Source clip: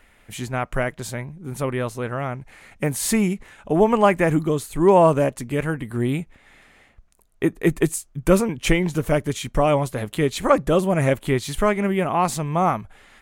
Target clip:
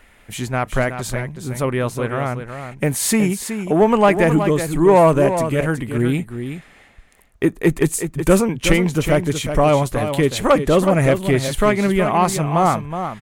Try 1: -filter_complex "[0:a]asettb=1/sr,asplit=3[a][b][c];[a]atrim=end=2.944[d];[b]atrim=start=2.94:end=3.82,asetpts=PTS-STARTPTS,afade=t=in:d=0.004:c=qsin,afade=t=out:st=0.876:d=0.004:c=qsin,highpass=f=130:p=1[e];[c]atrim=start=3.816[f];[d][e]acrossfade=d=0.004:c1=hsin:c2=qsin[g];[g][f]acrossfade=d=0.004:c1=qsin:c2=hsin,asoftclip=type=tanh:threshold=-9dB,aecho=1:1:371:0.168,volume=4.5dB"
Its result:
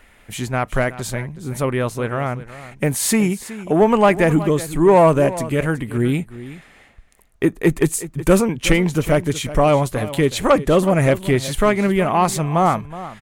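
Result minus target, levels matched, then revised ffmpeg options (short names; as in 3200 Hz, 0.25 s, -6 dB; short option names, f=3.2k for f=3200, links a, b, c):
echo-to-direct -6.5 dB
-filter_complex "[0:a]asettb=1/sr,asplit=3[a][b][c];[a]atrim=end=2.944[d];[b]atrim=start=2.94:end=3.82,asetpts=PTS-STARTPTS,afade=t=in:d=0.004:c=qsin,afade=t=out:st=0.876:d=0.004:c=qsin,highpass=f=130:p=1[e];[c]atrim=start=3.816[f];[d][e]acrossfade=d=0.004:c1=hsin:c2=qsin[g];[g][f]acrossfade=d=0.004:c1=qsin:c2=hsin,asoftclip=type=tanh:threshold=-9dB,aecho=1:1:371:0.355,volume=4.5dB"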